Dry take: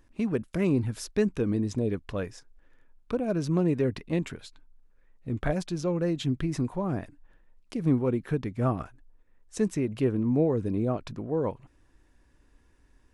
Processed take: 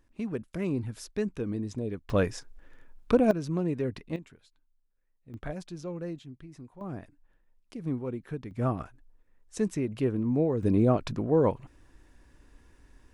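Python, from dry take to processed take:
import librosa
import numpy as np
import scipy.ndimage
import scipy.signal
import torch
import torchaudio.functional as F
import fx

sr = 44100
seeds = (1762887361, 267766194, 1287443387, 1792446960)

y = fx.gain(x, sr, db=fx.steps((0.0, -5.5), (2.1, 7.0), (3.31, -4.5), (4.16, -16.0), (5.34, -9.0), (6.19, -18.0), (6.81, -8.0), (8.51, -2.0), (10.63, 5.0)))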